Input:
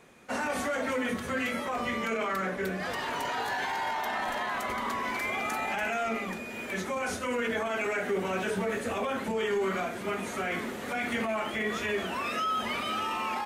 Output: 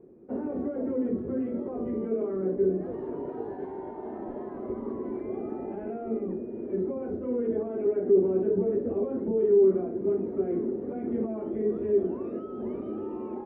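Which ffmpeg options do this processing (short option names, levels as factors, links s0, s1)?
-af "lowpass=f=370:t=q:w=4.1"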